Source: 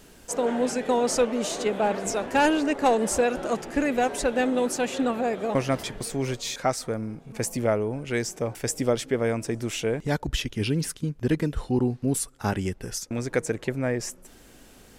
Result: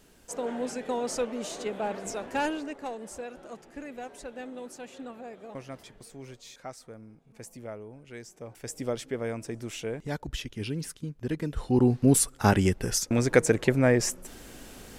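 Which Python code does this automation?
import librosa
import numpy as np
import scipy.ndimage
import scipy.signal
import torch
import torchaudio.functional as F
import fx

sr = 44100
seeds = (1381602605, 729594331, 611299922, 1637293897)

y = fx.gain(x, sr, db=fx.line((2.4, -7.5), (2.93, -16.5), (8.29, -16.5), (8.86, -7.5), (11.37, -7.5), (11.95, 5.0)))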